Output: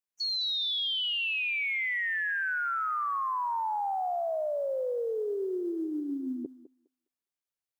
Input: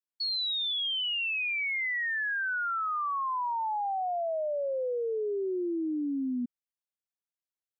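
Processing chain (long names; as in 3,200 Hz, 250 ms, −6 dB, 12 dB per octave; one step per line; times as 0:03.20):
formants moved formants +6 semitones
feedback echo with a high-pass in the loop 205 ms, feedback 23%, high-pass 460 Hz, level −11 dB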